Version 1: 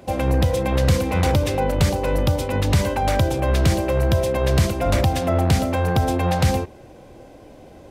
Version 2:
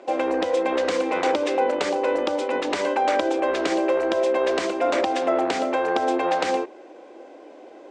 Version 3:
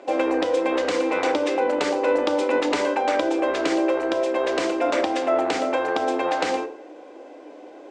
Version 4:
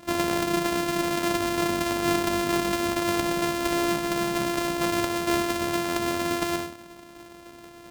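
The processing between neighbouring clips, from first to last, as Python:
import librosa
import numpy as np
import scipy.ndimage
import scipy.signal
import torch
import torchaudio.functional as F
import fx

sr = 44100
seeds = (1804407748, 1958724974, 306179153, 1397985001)

y1 = scipy.signal.sosfilt(scipy.signal.ellip(3, 1.0, 40, [320.0, 7800.0], 'bandpass', fs=sr, output='sos'), x)
y1 = fx.high_shelf(y1, sr, hz=4500.0, db=-11.5)
y1 = y1 * librosa.db_to_amplitude(2.5)
y2 = fx.rider(y1, sr, range_db=10, speed_s=0.5)
y2 = fx.rev_fdn(y2, sr, rt60_s=0.55, lf_ratio=0.85, hf_ratio=0.7, size_ms=20.0, drr_db=7.5)
y3 = np.r_[np.sort(y2[:len(y2) // 128 * 128].reshape(-1, 128), axis=1).ravel(), y2[len(y2) // 128 * 128:]]
y3 = y3 * librosa.db_to_amplitude(-3.5)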